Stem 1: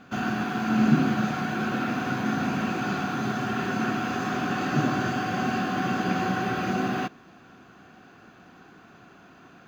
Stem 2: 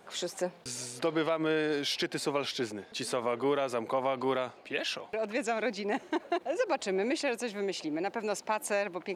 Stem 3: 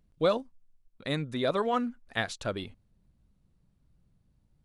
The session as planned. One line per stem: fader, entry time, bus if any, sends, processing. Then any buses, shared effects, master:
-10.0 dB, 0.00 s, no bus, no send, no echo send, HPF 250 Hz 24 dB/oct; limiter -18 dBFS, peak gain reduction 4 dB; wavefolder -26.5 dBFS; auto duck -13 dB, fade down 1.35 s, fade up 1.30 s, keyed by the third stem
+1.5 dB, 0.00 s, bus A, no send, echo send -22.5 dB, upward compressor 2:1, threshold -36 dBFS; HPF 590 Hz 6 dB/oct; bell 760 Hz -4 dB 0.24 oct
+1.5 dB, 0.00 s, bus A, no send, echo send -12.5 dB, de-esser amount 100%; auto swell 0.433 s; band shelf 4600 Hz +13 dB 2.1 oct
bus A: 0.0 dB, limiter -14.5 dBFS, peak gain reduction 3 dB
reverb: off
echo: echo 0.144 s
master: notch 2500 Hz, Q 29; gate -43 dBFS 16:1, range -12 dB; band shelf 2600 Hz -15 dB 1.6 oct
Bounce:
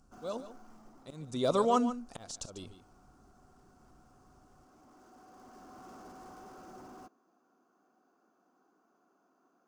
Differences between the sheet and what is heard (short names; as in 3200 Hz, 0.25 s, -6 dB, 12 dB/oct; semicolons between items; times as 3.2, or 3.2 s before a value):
stem 1 -10.0 dB -> -18.0 dB; stem 2: muted; master: missing gate -43 dBFS 16:1, range -12 dB